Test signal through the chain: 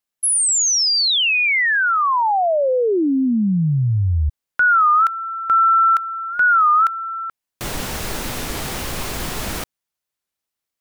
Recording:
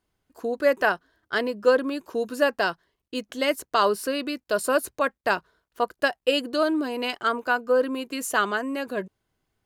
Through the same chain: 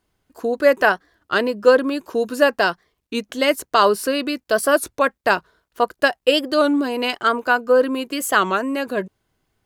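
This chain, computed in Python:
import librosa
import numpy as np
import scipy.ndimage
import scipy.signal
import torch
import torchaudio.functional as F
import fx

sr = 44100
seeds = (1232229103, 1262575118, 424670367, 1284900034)

y = fx.record_warp(x, sr, rpm=33.33, depth_cents=160.0)
y = y * librosa.db_to_amplitude(6.0)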